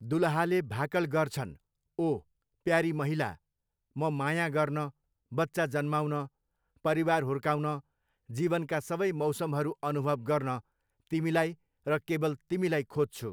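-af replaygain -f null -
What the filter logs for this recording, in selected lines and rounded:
track_gain = +11.7 dB
track_peak = 0.160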